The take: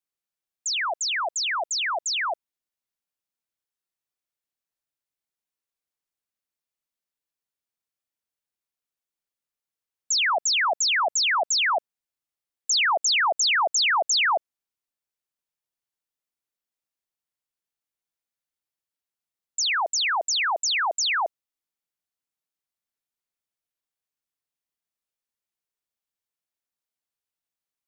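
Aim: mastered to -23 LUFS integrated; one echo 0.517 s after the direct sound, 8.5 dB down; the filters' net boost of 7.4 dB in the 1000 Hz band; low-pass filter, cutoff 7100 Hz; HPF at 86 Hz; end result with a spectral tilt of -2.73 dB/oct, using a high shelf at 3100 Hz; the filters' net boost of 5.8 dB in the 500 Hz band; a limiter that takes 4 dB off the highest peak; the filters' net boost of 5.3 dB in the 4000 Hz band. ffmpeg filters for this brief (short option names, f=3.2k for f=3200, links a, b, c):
-af "highpass=86,lowpass=7.1k,equalizer=f=500:t=o:g=4,equalizer=f=1k:t=o:g=7.5,highshelf=f=3.1k:g=3.5,equalizer=f=4k:t=o:g=4,alimiter=limit=-13.5dB:level=0:latency=1,aecho=1:1:517:0.376,volume=-5dB"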